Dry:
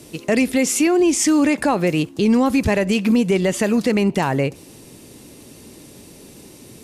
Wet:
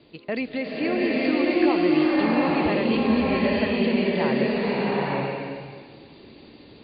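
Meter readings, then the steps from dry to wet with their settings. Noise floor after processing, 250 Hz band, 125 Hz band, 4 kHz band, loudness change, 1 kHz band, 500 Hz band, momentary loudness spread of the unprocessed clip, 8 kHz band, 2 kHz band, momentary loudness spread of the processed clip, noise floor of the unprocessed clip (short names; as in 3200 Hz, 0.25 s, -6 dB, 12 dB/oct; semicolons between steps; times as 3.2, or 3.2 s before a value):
-49 dBFS, -4.5 dB, -6.5 dB, -3.5 dB, -5.0 dB, -2.0 dB, -3.0 dB, 5 LU, under -40 dB, -2.0 dB, 10 LU, -43 dBFS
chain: Chebyshev low-pass 4700 Hz, order 10; low shelf 270 Hz -4.5 dB; bloom reverb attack 0.88 s, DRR -6 dB; gain -8.5 dB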